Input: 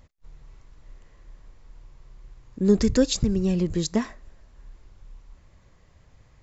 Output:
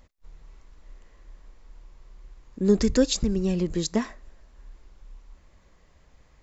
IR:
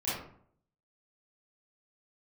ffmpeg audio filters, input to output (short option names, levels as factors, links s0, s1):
-af "equalizer=f=110:w=2.2:g=-13"